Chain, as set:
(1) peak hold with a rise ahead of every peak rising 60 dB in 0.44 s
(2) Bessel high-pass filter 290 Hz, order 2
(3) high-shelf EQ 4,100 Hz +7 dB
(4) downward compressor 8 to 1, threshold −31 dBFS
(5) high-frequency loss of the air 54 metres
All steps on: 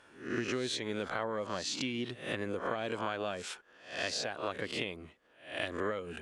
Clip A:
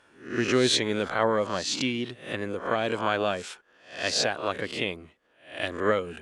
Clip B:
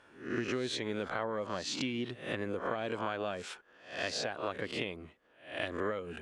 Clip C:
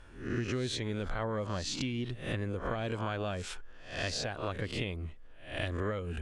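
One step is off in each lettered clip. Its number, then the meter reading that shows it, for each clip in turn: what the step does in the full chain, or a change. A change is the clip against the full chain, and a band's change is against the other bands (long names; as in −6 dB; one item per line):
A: 4, average gain reduction 6.5 dB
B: 3, 8 kHz band −3.0 dB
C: 2, 125 Hz band +12.0 dB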